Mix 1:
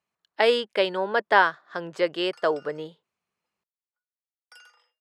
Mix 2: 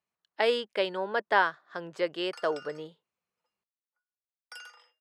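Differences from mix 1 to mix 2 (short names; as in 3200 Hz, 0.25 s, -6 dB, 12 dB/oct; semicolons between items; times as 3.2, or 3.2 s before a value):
speech -5.5 dB; background +5.5 dB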